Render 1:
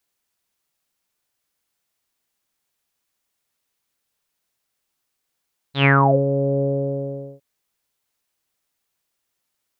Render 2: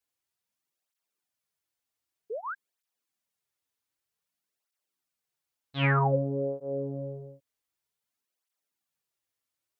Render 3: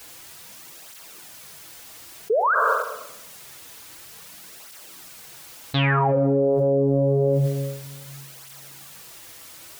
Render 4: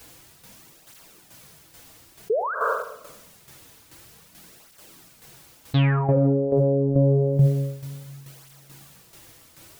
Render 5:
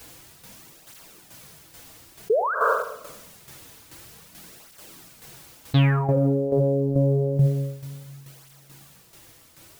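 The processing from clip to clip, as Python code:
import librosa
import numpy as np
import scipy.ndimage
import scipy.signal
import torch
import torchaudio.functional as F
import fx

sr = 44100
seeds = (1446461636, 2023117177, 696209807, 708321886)

y1 = fx.spec_paint(x, sr, seeds[0], shape='rise', start_s=2.3, length_s=0.25, low_hz=400.0, high_hz=1700.0, level_db=-26.0)
y1 = fx.flanger_cancel(y1, sr, hz=0.53, depth_ms=5.7)
y1 = F.gain(torch.from_numpy(y1), -7.0).numpy()
y2 = fx.room_shoebox(y1, sr, seeds[1], volume_m3=3400.0, walls='furnished', distance_m=0.66)
y2 = fx.env_flatten(y2, sr, amount_pct=100)
y2 = F.gain(torch.from_numpy(y2), 3.0).numpy()
y3 = fx.low_shelf(y2, sr, hz=420.0, db=11.5)
y3 = fx.tremolo_shape(y3, sr, shape='saw_down', hz=2.3, depth_pct=60)
y3 = F.gain(torch.from_numpy(y3), -4.5).numpy()
y4 = fx.quant_float(y3, sr, bits=6)
y4 = fx.rider(y4, sr, range_db=10, speed_s=0.5)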